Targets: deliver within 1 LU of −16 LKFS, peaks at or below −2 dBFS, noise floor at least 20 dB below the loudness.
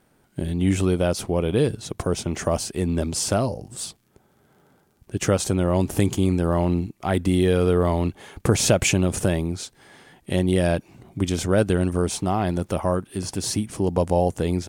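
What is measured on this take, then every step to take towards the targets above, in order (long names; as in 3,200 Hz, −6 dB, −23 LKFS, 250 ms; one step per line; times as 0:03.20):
crackle rate 39 per second; integrated loudness −23.0 LKFS; sample peak −4.5 dBFS; target loudness −16.0 LKFS
→ click removal
level +7 dB
brickwall limiter −2 dBFS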